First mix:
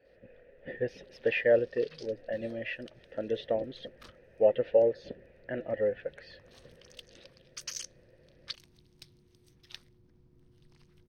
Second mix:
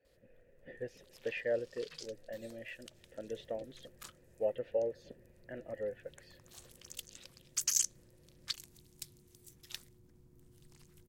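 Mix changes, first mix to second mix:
speech -10.0 dB; master: remove polynomial smoothing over 15 samples

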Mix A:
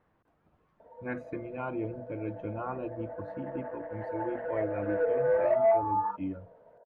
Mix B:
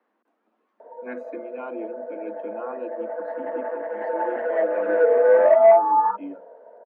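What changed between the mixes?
background +10.5 dB; master: add steep high-pass 210 Hz 96 dB/oct

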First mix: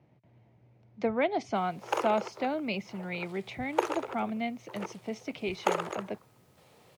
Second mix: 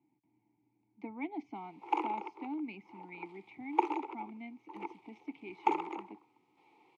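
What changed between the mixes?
background +10.0 dB; master: add vowel filter u

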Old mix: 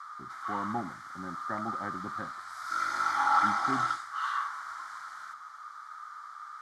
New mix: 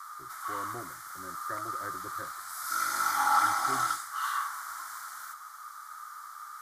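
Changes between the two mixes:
speech: add fixed phaser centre 810 Hz, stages 6; background: remove LPF 4000 Hz 12 dB/oct

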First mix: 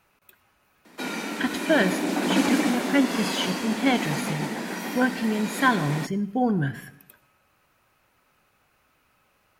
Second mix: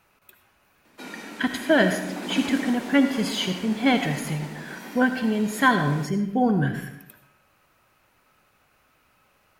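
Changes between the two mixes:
speech: send +10.0 dB; background -8.0 dB

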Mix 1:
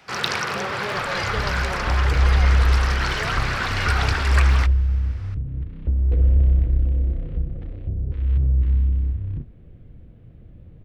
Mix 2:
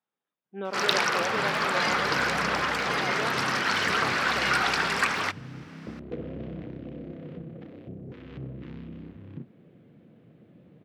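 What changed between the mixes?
first sound: entry +0.65 s; master: add HPF 170 Hz 24 dB/oct

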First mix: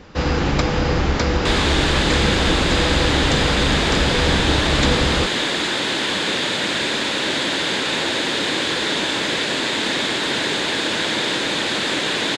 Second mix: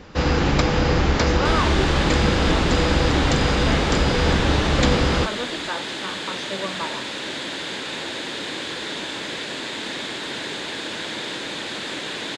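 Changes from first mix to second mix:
speech +12.0 dB; second sound -8.5 dB

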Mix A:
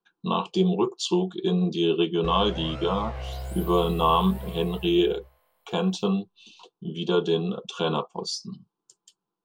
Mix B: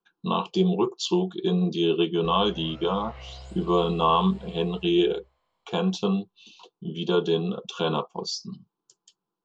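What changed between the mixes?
first sound -9.0 dB; master: add steep low-pass 7100 Hz 48 dB/oct

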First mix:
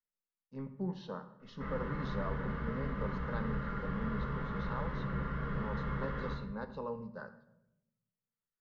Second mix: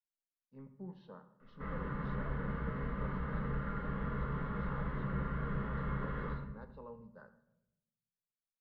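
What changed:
speech -9.5 dB; master: add air absorption 210 m

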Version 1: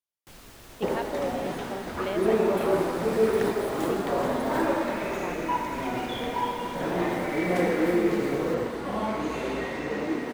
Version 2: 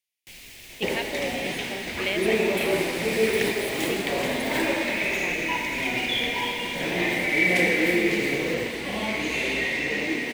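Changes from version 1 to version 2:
first sound -3.5 dB; master: add resonant high shelf 1700 Hz +9 dB, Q 3

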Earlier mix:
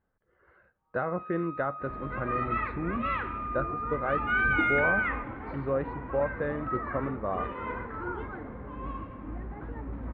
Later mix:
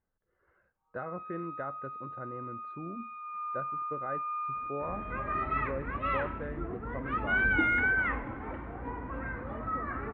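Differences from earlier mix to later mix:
speech -8.0 dB; second sound: entry +3.00 s; master: add air absorption 110 m

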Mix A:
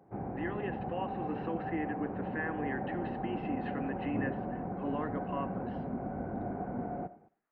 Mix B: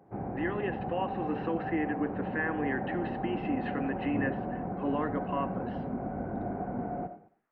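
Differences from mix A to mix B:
speech +5.0 dB; background: send +8.5 dB

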